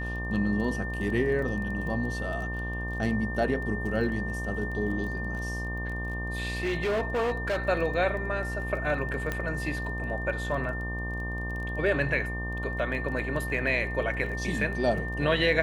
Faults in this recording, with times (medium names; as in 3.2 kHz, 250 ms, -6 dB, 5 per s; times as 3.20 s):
buzz 60 Hz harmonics 20 -34 dBFS
crackle 17 per s -36 dBFS
whine 1.8 kHz -35 dBFS
6.60–7.59 s: clipped -24 dBFS
9.32 s: pop -16 dBFS